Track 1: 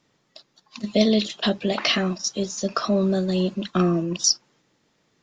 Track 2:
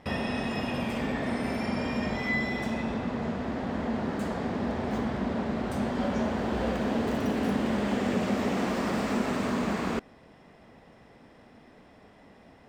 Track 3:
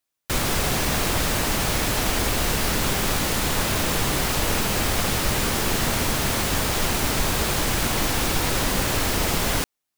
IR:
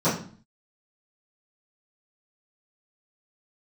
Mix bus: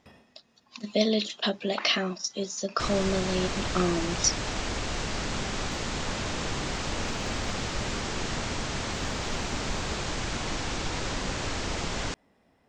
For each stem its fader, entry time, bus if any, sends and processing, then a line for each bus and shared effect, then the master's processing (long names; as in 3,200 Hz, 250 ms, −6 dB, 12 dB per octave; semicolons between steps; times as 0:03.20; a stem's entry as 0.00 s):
−3.0 dB, 0.00 s, no send, low-shelf EQ 170 Hz −11.5 dB; every ending faded ahead of time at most 400 dB per second
−12.0 dB, 0.00 s, muted 0:08.01–0:08.92, no send, brickwall limiter −25.5 dBFS, peak gain reduction 9 dB; high-shelf EQ 6,600 Hz +7 dB; automatic ducking −23 dB, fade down 0.35 s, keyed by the first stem
−8.0 dB, 2.50 s, no send, Butterworth low-pass 7,500 Hz 48 dB per octave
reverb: not used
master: no processing